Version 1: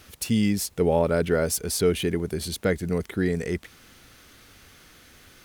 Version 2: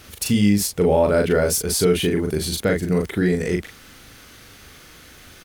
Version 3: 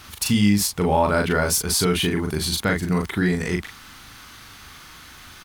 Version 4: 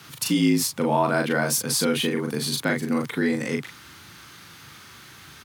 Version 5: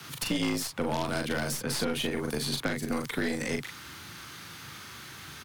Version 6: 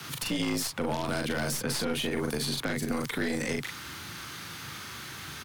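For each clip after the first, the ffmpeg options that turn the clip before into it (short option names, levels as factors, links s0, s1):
-filter_complex "[0:a]asplit=2[s0][s1];[s1]adelay=39,volume=0.668[s2];[s0][s2]amix=inputs=2:normalize=0,asplit=2[s3][s4];[s4]alimiter=limit=0.141:level=0:latency=1:release=128,volume=0.794[s5];[s3][s5]amix=inputs=2:normalize=0"
-af "equalizer=f=500:t=o:w=1:g=-9,equalizer=f=1000:t=o:w=1:g=9,equalizer=f=4000:t=o:w=1:g=3"
-af "afreqshift=62,volume=0.75"
-filter_complex "[0:a]aeval=exprs='0.335*(cos(1*acos(clip(val(0)/0.335,-1,1)))-cos(1*PI/2))+0.0299*(cos(3*acos(clip(val(0)/0.335,-1,1)))-cos(3*PI/2))+0.0422*(cos(6*acos(clip(val(0)/0.335,-1,1)))-cos(6*PI/2))+0.0188*(cos(8*acos(clip(val(0)/0.335,-1,1)))-cos(8*PI/2))':c=same,acrossover=split=98|370|3500[s0][s1][s2][s3];[s0]acompressor=threshold=0.00562:ratio=4[s4];[s1]acompressor=threshold=0.0112:ratio=4[s5];[s2]acompressor=threshold=0.0141:ratio=4[s6];[s3]acompressor=threshold=0.00891:ratio=4[s7];[s4][s5][s6][s7]amix=inputs=4:normalize=0,volume=1.58"
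-af "alimiter=level_in=1.06:limit=0.0631:level=0:latency=1:release=53,volume=0.944,volume=1.5"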